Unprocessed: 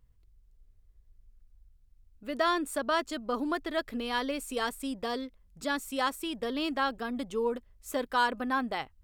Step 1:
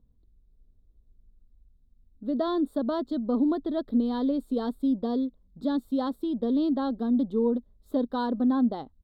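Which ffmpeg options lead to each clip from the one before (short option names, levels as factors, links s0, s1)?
-af "firequalizer=gain_entry='entry(120,0);entry(230,13);entry(360,5);entry(2500,-29);entry(3700,-1);entry(6000,-26);entry(14000,-16)':delay=0.05:min_phase=1"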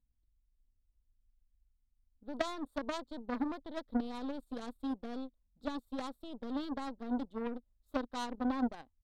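-af "equalizer=f=160:t=o:w=0.67:g=-12,equalizer=f=400:t=o:w=0.67:g=-11,equalizer=f=2500:t=o:w=0.67:g=3,aeval=exprs='0.119*(cos(1*acos(clip(val(0)/0.119,-1,1)))-cos(1*PI/2))+0.0335*(cos(3*acos(clip(val(0)/0.119,-1,1)))-cos(3*PI/2))+0.00944*(cos(6*acos(clip(val(0)/0.119,-1,1)))-cos(6*PI/2))+0.00944*(cos(8*acos(clip(val(0)/0.119,-1,1)))-cos(8*PI/2))':c=same,volume=1.26"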